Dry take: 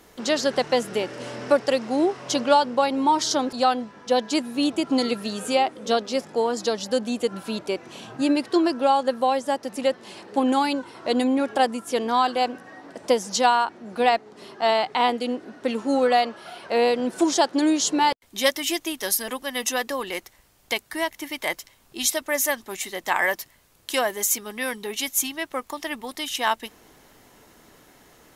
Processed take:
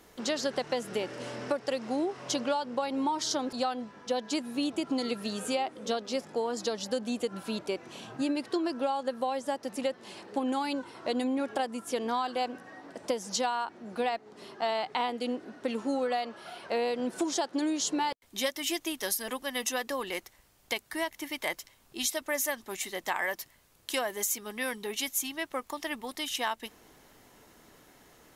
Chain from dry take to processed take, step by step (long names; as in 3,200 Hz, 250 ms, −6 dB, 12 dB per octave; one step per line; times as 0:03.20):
downward compressor, threshold −22 dBFS, peak gain reduction 9.5 dB
level −4.5 dB